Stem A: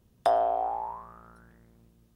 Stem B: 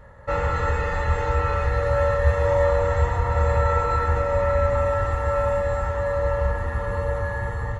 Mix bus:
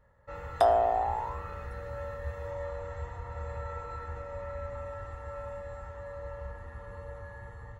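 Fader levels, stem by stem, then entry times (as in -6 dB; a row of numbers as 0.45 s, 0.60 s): +1.0 dB, -18.0 dB; 0.35 s, 0.00 s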